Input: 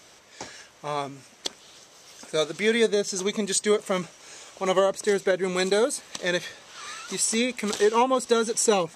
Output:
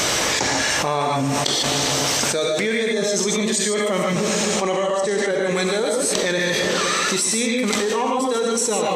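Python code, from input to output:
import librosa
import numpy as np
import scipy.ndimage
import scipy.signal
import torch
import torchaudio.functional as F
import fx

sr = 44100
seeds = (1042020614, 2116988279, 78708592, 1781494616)

y = fx.lowpass(x, sr, hz=10000.0, slope=24, at=(4.5, 5.31))
y = fx.echo_filtered(y, sr, ms=257, feedback_pct=79, hz=1100.0, wet_db=-18.0)
y = fx.rev_gated(y, sr, seeds[0], gate_ms=170, shape='rising', drr_db=-0.5)
y = fx.env_flatten(y, sr, amount_pct=100)
y = F.gain(torch.from_numpy(y), -5.5).numpy()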